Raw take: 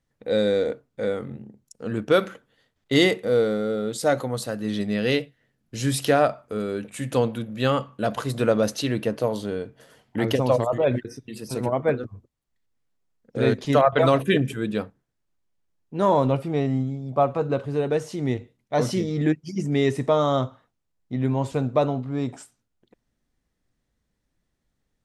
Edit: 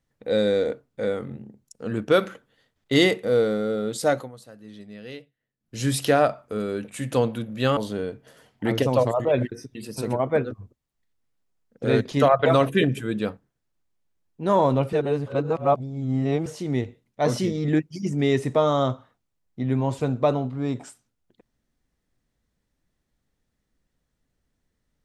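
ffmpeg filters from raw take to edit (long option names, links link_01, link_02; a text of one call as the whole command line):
ffmpeg -i in.wav -filter_complex "[0:a]asplit=6[link_01][link_02][link_03][link_04][link_05][link_06];[link_01]atrim=end=4.32,asetpts=PTS-STARTPTS,afade=type=out:start_time=4.09:duration=0.23:silence=0.149624[link_07];[link_02]atrim=start=4.32:end=5.59,asetpts=PTS-STARTPTS,volume=-16.5dB[link_08];[link_03]atrim=start=5.59:end=7.772,asetpts=PTS-STARTPTS,afade=type=in:duration=0.23:silence=0.149624[link_09];[link_04]atrim=start=9.298:end=16.462[link_10];[link_05]atrim=start=16.458:end=17.992,asetpts=PTS-STARTPTS,areverse[link_11];[link_06]atrim=start=17.988[link_12];[link_07][link_08][link_09]concat=n=3:v=0:a=1[link_13];[link_13][link_10]acrossfade=duration=0.004:curve1=hsin:curve2=hsin[link_14];[link_14][link_11]acrossfade=duration=0.004:curve1=hsin:curve2=hsin[link_15];[link_15][link_12]acrossfade=duration=0.004:curve1=hsin:curve2=hsin" out.wav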